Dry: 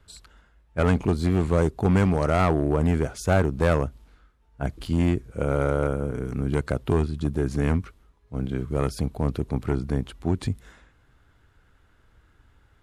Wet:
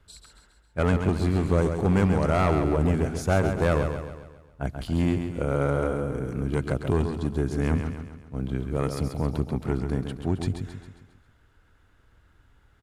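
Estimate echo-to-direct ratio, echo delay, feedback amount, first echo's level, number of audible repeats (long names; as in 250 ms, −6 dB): −6.0 dB, 135 ms, 49%, −7.0 dB, 5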